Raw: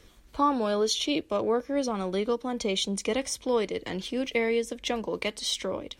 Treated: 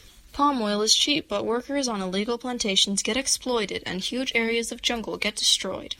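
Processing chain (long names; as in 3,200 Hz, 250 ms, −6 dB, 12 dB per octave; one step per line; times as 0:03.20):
spectral magnitudes quantised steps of 15 dB
drawn EQ curve 160 Hz 0 dB, 460 Hz −5 dB, 4,100 Hz +6 dB
level +4.5 dB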